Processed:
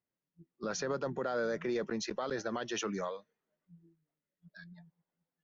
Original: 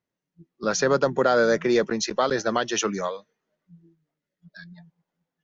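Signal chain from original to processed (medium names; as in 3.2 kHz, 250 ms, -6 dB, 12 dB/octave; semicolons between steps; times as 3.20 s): treble shelf 5.6 kHz -9 dB; peak limiter -18.5 dBFS, peak gain reduction 8.5 dB; trim -7.5 dB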